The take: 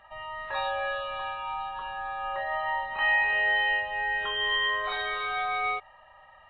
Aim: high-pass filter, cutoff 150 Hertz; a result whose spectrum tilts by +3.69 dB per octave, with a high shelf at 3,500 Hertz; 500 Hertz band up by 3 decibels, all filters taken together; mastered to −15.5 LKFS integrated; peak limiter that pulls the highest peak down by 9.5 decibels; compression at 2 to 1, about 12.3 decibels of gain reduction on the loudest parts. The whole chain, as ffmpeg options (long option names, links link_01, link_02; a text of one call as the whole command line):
ffmpeg -i in.wav -af "highpass=150,equalizer=frequency=500:width_type=o:gain=3.5,highshelf=frequency=3500:gain=4,acompressor=threshold=-44dB:ratio=2,volume=27.5dB,alimiter=limit=-9dB:level=0:latency=1" out.wav